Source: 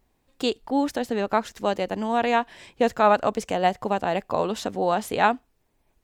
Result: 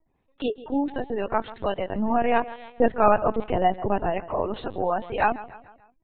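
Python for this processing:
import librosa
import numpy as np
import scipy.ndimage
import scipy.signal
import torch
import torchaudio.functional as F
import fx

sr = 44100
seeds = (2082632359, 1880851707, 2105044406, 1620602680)

y = fx.spec_gate(x, sr, threshold_db=-25, keep='strong')
y = fx.low_shelf(y, sr, hz=400.0, db=8.0, at=(1.95, 4.11))
y = fx.echo_feedback(y, sr, ms=146, feedback_pct=48, wet_db=-17)
y = fx.lpc_vocoder(y, sr, seeds[0], excitation='pitch_kept', order=16)
y = F.gain(torch.from_numpy(y), -2.0).numpy()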